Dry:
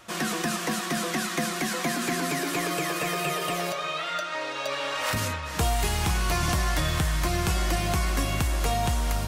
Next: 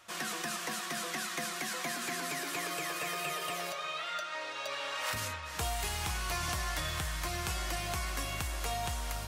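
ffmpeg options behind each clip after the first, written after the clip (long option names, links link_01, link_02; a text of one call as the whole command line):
ffmpeg -i in.wav -af "highpass=58,equalizer=frequency=210:width=0.5:gain=-9.5,volume=-6dB" out.wav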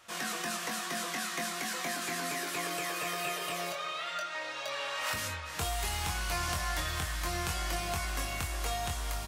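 ffmpeg -i in.wav -filter_complex "[0:a]asplit=2[link_01][link_02];[link_02]adelay=23,volume=-5dB[link_03];[link_01][link_03]amix=inputs=2:normalize=0" out.wav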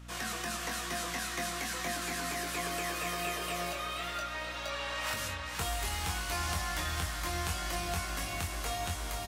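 ffmpeg -i in.wav -af "aeval=exprs='val(0)+0.00501*(sin(2*PI*60*n/s)+sin(2*PI*2*60*n/s)/2+sin(2*PI*3*60*n/s)/3+sin(2*PI*4*60*n/s)/4+sin(2*PI*5*60*n/s)/5)':channel_layout=same,aecho=1:1:480|960|1440|1920:0.398|0.155|0.0606|0.0236,volume=-1.5dB" out.wav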